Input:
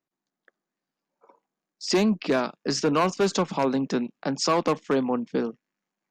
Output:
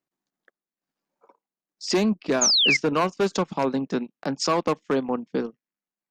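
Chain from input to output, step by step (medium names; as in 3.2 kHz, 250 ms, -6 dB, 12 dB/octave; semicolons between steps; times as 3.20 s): painted sound fall, 2.41–2.77 s, 2–7 kHz -19 dBFS; transient shaper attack 0 dB, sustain -12 dB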